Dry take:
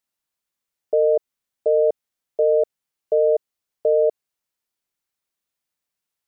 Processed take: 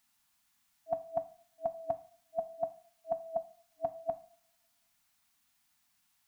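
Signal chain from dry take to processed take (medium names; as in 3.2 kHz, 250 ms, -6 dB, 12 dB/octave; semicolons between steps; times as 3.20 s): FFT band-reject 300–650 Hz; two-slope reverb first 0.48 s, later 1.7 s, from -26 dB, DRR 9.5 dB; trim +9.5 dB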